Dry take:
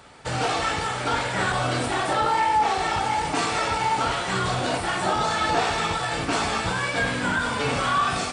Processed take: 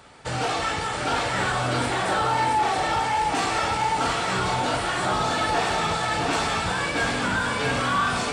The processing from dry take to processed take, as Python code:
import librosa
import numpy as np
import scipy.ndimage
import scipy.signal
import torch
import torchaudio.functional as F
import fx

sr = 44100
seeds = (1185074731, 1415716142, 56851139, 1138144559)

p1 = x + 10.0 ** (-3.5 / 20.0) * np.pad(x, (int(671 * sr / 1000.0), 0))[:len(x)]
p2 = np.clip(p1, -10.0 ** (-20.5 / 20.0), 10.0 ** (-20.5 / 20.0))
p3 = p1 + F.gain(torch.from_numpy(p2), -5.5).numpy()
y = F.gain(torch.from_numpy(p3), -4.5).numpy()